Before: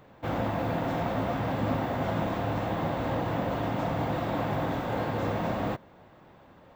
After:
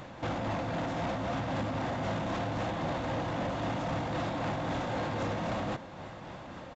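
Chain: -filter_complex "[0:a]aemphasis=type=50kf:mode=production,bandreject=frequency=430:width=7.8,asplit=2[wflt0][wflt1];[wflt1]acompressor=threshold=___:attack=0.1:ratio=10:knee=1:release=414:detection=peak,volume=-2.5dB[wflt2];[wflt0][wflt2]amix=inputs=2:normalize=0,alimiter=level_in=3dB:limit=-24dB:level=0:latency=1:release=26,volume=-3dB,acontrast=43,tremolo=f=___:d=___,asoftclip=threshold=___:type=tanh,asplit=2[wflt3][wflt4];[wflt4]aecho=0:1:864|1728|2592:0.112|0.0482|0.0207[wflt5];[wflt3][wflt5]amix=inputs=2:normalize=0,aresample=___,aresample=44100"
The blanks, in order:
-38dB, 3.8, 0.32, -27dB, 16000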